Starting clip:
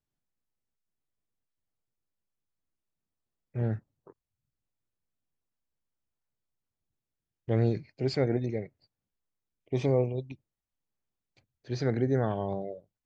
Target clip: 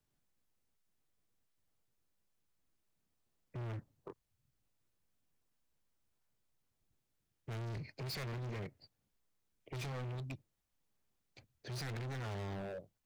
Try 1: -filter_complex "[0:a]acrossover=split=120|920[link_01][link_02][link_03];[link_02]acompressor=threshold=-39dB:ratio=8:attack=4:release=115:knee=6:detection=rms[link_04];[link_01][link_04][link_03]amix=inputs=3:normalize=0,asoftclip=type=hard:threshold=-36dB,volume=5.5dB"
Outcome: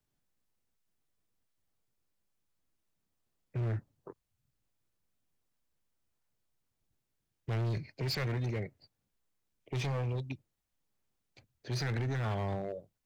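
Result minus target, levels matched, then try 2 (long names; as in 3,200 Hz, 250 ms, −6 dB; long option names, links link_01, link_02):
hard clipping: distortion −5 dB
-filter_complex "[0:a]acrossover=split=120|920[link_01][link_02][link_03];[link_02]acompressor=threshold=-39dB:ratio=8:attack=4:release=115:knee=6:detection=rms[link_04];[link_01][link_04][link_03]amix=inputs=3:normalize=0,asoftclip=type=hard:threshold=-46dB,volume=5.5dB"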